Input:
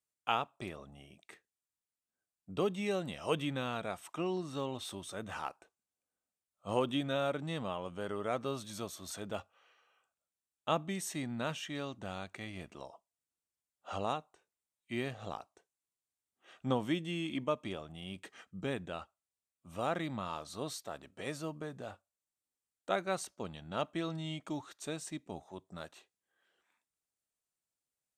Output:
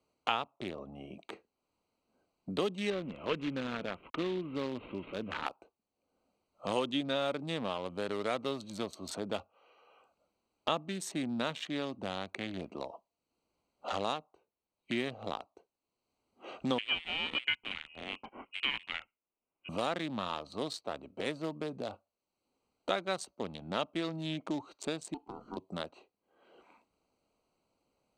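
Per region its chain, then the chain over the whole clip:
2.9–5.46 CVSD 16 kbps + bell 760 Hz -9.5 dB 0.66 oct
16.78–19.69 ring modulator 410 Hz + inverted band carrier 3100 Hz
25.14–25.57 compressor 5:1, threshold -42 dBFS + ring modulator 580 Hz
whole clip: Wiener smoothing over 25 samples; graphic EQ 125/250/500/1000/2000/4000/8000 Hz -3/+5/+4/+4/+5/+11/+4 dB; three-band squash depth 70%; gain -2 dB

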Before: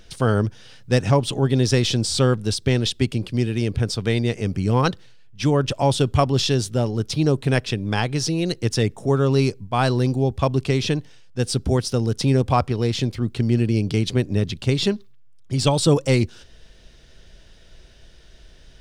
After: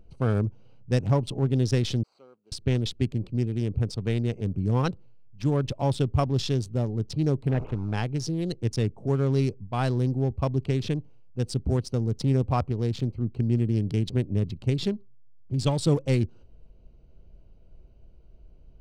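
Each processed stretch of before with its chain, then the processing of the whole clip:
2.03–2.52 median filter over 15 samples + BPF 250–5800 Hz + differentiator
7.49–7.94 delta modulation 16 kbps, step -21.5 dBFS + air absorption 310 m
whole clip: Wiener smoothing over 25 samples; low shelf 250 Hz +6 dB; gain -8.5 dB

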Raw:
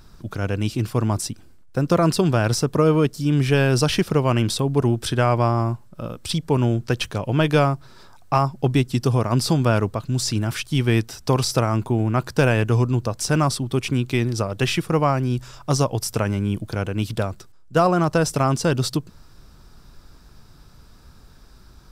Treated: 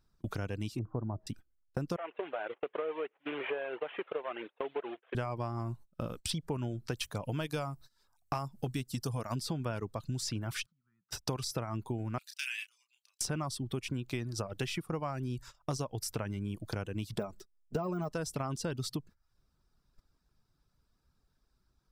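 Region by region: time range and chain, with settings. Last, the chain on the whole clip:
0.79–1.27 LPF 1000 Hz 24 dB/oct + de-hum 318.7 Hz, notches 2
1.96–5.15 CVSD 16 kbps + Chebyshev high-pass 450 Hz, order 3
6.95–9.36 de-esser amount 25% + high shelf 5600 Hz +11 dB + notch 370 Hz, Q 7.5
10.66–11.11 double band-pass 490 Hz, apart 2.9 oct + compressor 5:1, threshold -48 dBFS
12.18–13.21 Chebyshev high-pass 2400 Hz, order 3 + doubler 31 ms -5.5 dB
17.18–18.13 de-esser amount 95% + bell 360 Hz +6 dB 1.8 oct + comb 4.8 ms, depth 55%
whole clip: reverb removal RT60 0.54 s; gate -37 dBFS, range -25 dB; compressor 6:1, threshold -34 dBFS

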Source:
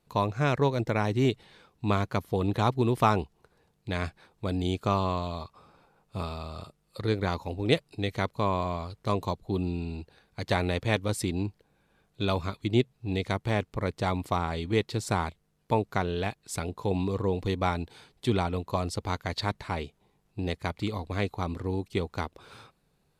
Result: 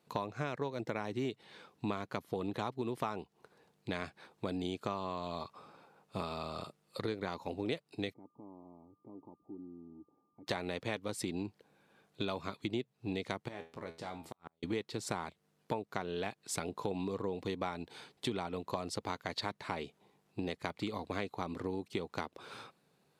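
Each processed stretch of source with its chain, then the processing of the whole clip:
8.12–10.46 compressor 2.5:1, threshold -43 dBFS + vocal tract filter u + whine 1200 Hz -79 dBFS
13.48–14.63 compressor 4:1, threshold -32 dBFS + resonator 82 Hz, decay 0.31 s, mix 80% + flipped gate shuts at -31 dBFS, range -42 dB
whole clip: HPF 180 Hz 12 dB/oct; high shelf 9400 Hz -5 dB; compressor 6:1, threshold -35 dBFS; gain +1.5 dB

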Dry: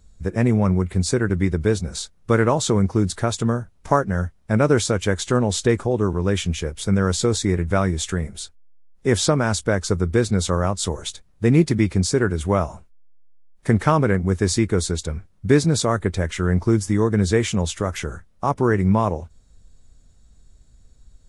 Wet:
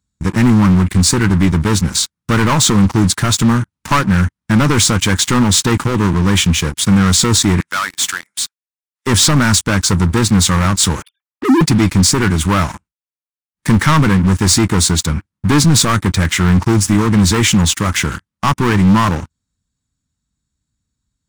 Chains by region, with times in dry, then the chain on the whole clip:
7.6–9.07 HPF 1100 Hz + overloaded stage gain 28 dB
11.02–11.61 sine-wave speech + LPF 1300 Hz 6 dB/oct + envelope flanger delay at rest 4.3 ms, full sweep at -18 dBFS
whole clip: HPF 99 Hz 12 dB/oct; sample leveller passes 5; band shelf 530 Hz -11 dB 1.2 oct; gain -3 dB

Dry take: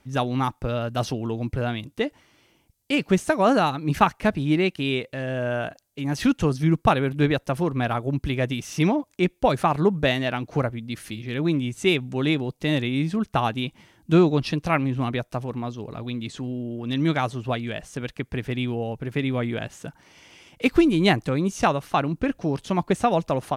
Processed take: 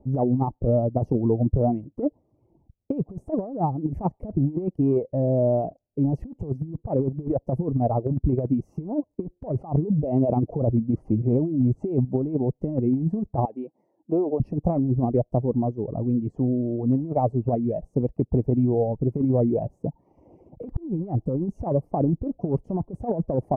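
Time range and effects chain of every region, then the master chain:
9.56–12.05 LPF 5600 Hz + notch 1800 Hz, Q 5.7 + negative-ratio compressor -28 dBFS
13.45–14.4 HPF 450 Hz + compressor 10:1, threshold -25 dBFS
whole clip: inverse Chebyshev low-pass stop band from 1400 Hz, stop band 40 dB; reverb removal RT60 0.73 s; negative-ratio compressor -27 dBFS, ratio -0.5; gain +5.5 dB

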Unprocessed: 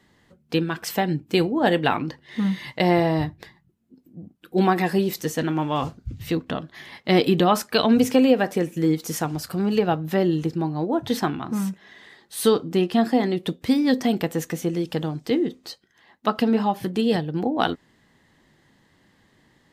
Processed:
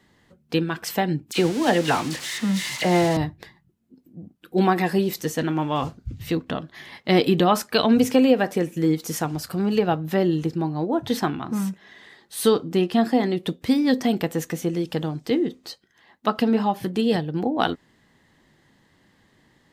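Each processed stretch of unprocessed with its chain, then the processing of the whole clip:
1.31–3.17 switching spikes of -14 dBFS + air absorption 70 m + dispersion lows, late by 47 ms, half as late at 2000 Hz
whole clip: dry

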